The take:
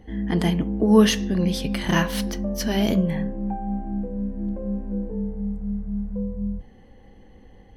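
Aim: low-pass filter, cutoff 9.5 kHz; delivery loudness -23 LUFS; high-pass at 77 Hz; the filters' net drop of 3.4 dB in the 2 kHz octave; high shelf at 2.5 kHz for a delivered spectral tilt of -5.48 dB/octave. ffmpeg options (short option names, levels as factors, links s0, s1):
-af "highpass=77,lowpass=9500,equalizer=f=2000:t=o:g=-6,highshelf=f=2500:g=4,volume=1.19"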